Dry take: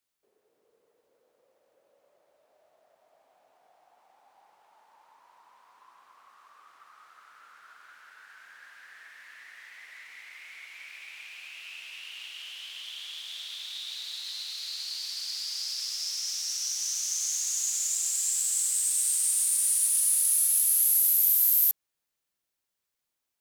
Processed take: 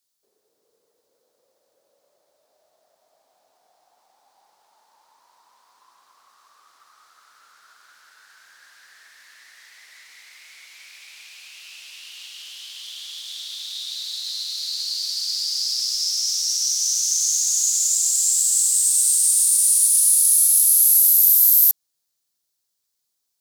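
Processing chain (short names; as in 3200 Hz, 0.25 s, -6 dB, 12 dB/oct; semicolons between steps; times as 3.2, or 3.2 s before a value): resonant high shelf 3400 Hz +8 dB, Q 1.5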